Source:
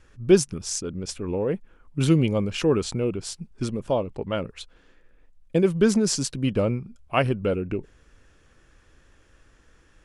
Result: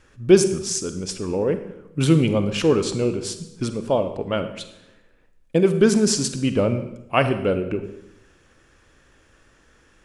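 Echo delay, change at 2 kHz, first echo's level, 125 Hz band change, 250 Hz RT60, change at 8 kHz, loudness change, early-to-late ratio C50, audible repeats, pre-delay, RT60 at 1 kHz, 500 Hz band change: none, +4.0 dB, none, +2.0 dB, 1.0 s, +4.0 dB, +3.5 dB, 10.0 dB, none, 37 ms, 0.80 s, +4.0 dB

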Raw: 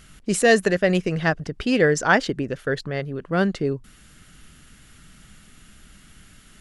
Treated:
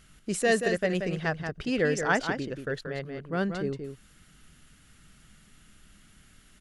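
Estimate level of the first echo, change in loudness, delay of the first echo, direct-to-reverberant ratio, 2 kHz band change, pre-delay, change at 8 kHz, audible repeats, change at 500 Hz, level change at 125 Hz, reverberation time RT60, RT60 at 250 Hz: -7.0 dB, -7.5 dB, 0.181 s, none, -7.0 dB, none, -7.0 dB, 1, -7.0 dB, -7.5 dB, none, none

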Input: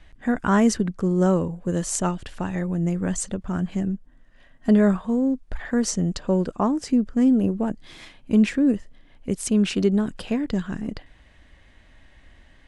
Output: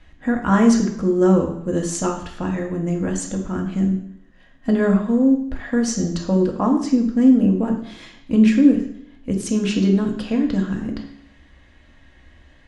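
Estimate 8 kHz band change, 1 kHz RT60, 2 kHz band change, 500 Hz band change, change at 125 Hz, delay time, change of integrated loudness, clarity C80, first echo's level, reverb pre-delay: 0.0 dB, 0.70 s, +2.5 dB, +3.5 dB, +2.5 dB, none, +4.0 dB, 10.5 dB, none, 3 ms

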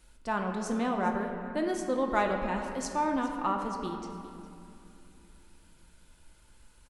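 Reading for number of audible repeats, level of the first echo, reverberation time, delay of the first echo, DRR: 1, -17.0 dB, 2.7 s, 0.408 s, 2.0 dB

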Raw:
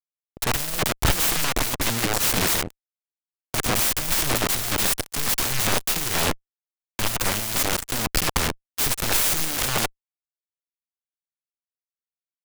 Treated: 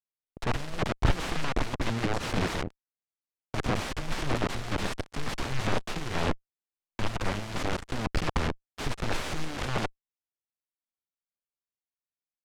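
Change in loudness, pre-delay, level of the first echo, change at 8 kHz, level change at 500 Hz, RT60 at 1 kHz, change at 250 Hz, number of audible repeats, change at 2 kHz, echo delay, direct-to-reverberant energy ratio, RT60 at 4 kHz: -10.0 dB, none, none, -20.0 dB, -3.5 dB, none, -2.0 dB, none, -7.5 dB, none, none, none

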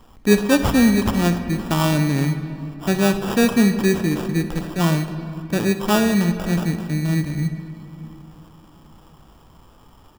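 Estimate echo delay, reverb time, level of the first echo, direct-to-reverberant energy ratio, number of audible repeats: 63 ms, 2.8 s, -16.5 dB, 8.5 dB, 1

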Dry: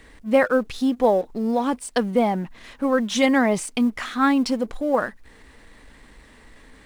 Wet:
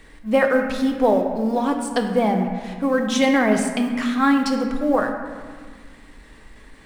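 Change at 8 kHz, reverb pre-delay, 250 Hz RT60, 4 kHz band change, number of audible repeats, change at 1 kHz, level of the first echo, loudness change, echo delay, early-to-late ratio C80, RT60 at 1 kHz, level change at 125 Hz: +0.5 dB, 3 ms, 2.4 s, +1.0 dB, none, +1.5 dB, none, +1.5 dB, none, 7.0 dB, 1.7 s, +3.5 dB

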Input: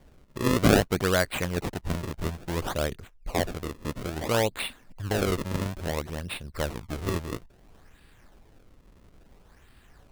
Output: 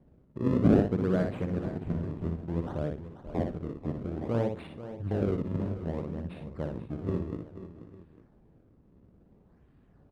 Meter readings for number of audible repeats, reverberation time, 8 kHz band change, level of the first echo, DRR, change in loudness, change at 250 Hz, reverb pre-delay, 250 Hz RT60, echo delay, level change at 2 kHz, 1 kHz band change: 5, none, under -25 dB, -5.0 dB, none, -3.0 dB, +0.5 dB, none, none, 60 ms, -15.5 dB, -9.5 dB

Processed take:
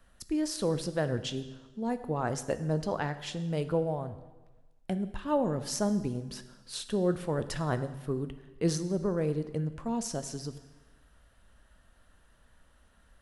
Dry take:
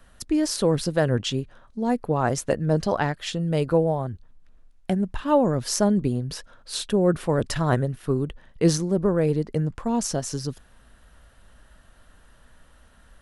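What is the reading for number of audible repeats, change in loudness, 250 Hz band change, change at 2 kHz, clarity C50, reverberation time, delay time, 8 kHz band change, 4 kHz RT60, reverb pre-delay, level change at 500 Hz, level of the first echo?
none, -8.0 dB, -8.0 dB, -8.0 dB, 13.0 dB, 1.2 s, none, -8.0 dB, 1.1 s, 6 ms, -8.0 dB, none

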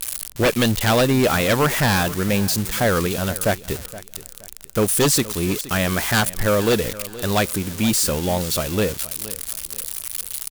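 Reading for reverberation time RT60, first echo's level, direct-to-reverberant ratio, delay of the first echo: none, -17.0 dB, none, 0.471 s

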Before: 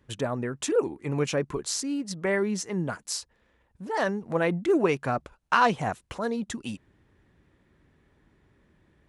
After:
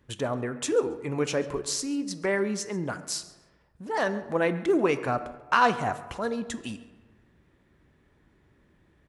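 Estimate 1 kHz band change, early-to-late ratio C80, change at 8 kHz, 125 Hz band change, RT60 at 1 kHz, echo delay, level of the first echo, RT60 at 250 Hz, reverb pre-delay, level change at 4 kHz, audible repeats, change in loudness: +0.5 dB, 14.5 dB, 0.0 dB, -3.0 dB, 1.3 s, 0.137 s, -20.0 dB, 1.3 s, 7 ms, 0.0 dB, 1, 0.0 dB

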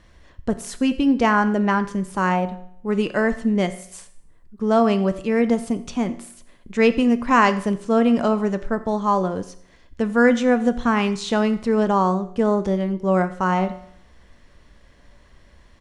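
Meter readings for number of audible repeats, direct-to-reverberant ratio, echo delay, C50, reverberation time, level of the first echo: 1, 10.5 dB, 88 ms, 14.5 dB, 0.65 s, -21.5 dB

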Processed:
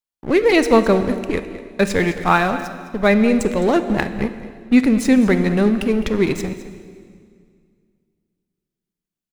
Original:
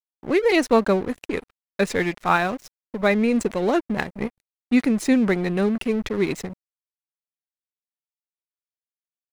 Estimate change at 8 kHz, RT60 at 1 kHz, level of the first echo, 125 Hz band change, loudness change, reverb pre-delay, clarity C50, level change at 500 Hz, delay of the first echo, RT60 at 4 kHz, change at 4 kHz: +4.0 dB, 2.0 s, -15.0 dB, +6.5 dB, +4.5 dB, 19 ms, 10.0 dB, +4.5 dB, 0.21 s, 1.8 s, +4.0 dB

